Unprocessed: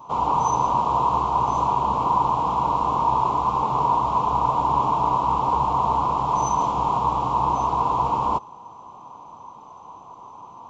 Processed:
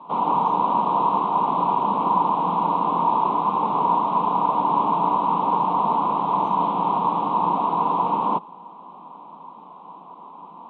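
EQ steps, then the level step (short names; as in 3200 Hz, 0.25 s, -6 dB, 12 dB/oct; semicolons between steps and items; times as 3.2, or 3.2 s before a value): Chebyshev band-pass 170–3800 Hz, order 5; low shelf 220 Hz +10.5 dB; 0.0 dB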